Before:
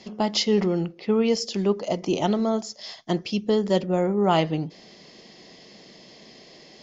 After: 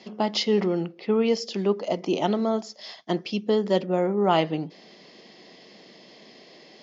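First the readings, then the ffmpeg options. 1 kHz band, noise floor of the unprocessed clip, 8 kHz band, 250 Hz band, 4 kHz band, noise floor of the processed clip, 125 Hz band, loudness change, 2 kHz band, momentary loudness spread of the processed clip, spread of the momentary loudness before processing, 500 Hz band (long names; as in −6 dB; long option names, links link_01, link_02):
0.0 dB, −50 dBFS, can't be measured, −2.0 dB, −2.0 dB, −51 dBFS, −3.5 dB, −1.0 dB, 0.0 dB, 8 LU, 8 LU, 0.0 dB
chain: -af "highpass=190,lowpass=4800"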